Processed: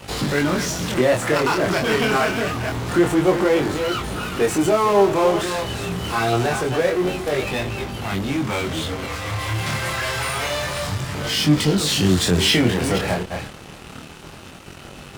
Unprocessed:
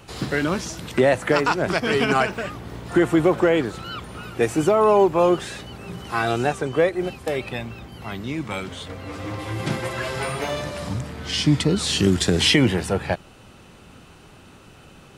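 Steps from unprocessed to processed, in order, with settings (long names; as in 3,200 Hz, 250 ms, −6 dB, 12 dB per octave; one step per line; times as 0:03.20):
delay that plays each chunk backwards 245 ms, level −11 dB
0:09.05–0:11.15: parametric band 290 Hz −13.5 dB 1.9 octaves
in parallel at −9.5 dB: fuzz pedal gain 39 dB, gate −46 dBFS
on the sum: chorus effect 0.26 Hz, delay 20 ms, depth 7.6 ms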